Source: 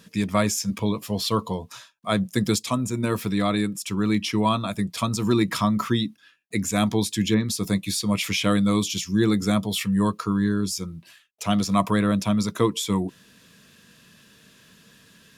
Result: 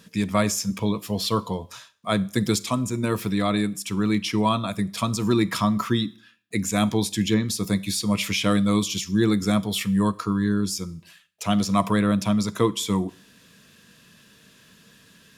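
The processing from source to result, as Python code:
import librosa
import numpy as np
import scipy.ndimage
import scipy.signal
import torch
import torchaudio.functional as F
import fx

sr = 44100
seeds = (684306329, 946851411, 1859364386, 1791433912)

y = fx.rev_schroeder(x, sr, rt60_s=0.5, comb_ms=31, drr_db=19.0)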